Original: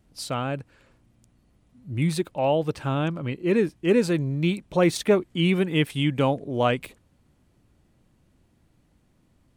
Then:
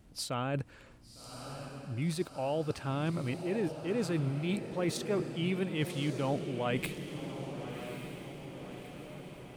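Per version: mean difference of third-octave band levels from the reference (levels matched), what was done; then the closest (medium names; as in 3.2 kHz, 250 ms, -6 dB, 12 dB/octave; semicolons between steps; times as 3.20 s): 8.5 dB: reverse; compression 6:1, threshold -34 dBFS, peak gain reduction 18.5 dB; reverse; echo that smears into a reverb 1157 ms, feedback 59%, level -8.5 dB; trim +3 dB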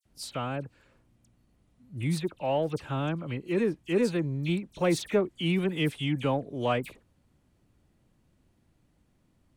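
6.0 dB: phase dispersion lows, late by 54 ms, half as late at 2.9 kHz; in parallel at -11 dB: saturation -22 dBFS, distortion -9 dB; on the sum: trim -6.5 dB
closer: second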